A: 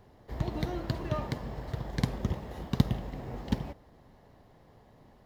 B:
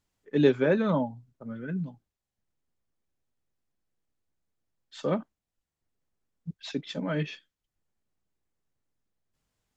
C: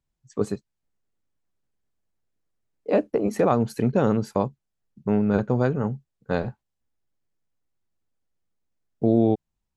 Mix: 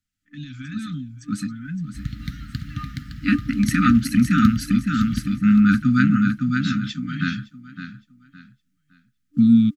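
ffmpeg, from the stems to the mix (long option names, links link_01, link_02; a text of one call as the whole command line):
ffmpeg -i stem1.wav -i stem2.wav -i stem3.wav -filter_complex "[0:a]adelay=1650,volume=-8dB,asplit=2[link_01][link_02];[link_02]volume=-7dB[link_03];[1:a]alimiter=limit=-20dB:level=0:latency=1:release=31,acrossover=split=150|3000[link_04][link_05][link_06];[link_05]acompressor=threshold=-40dB:ratio=4[link_07];[link_04][link_07][link_06]amix=inputs=3:normalize=0,volume=-4dB,asplit=3[link_08][link_09][link_10];[link_09]volume=-22dB[link_11];[2:a]bandreject=frequency=7100:width=6.8,agate=range=-33dB:threshold=-51dB:ratio=3:detection=peak,highpass=210,adelay=350,volume=1dB,asplit=2[link_12][link_13];[link_13]volume=-4.5dB[link_14];[link_10]apad=whole_len=446012[link_15];[link_12][link_15]sidechaincompress=threshold=-53dB:ratio=8:attack=16:release=138[link_16];[link_03][link_11][link_14]amix=inputs=3:normalize=0,aecho=0:1:563|1126|1689|2252:1|0.29|0.0841|0.0244[link_17];[link_01][link_08][link_16][link_17]amix=inputs=4:normalize=0,afftfilt=real='re*(1-between(b*sr/4096,300,1200))':imag='im*(1-between(b*sr/4096,300,1200))':win_size=4096:overlap=0.75,dynaudnorm=framelen=110:gausssize=9:maxgain=11dB" out.wav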